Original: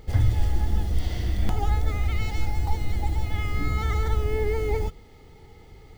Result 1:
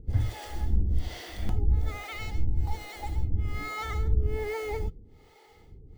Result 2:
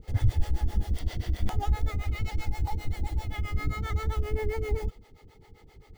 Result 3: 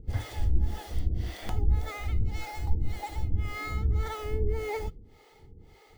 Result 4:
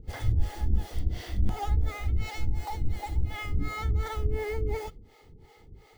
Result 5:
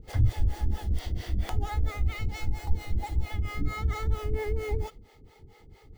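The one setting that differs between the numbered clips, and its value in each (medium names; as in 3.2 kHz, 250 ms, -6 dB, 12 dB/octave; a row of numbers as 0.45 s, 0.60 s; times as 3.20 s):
harmonic tremolo, rate: 1.2 Hz, 7.6 Hz, 1.8 Hz, 2.8 Hz, 4.4 Hz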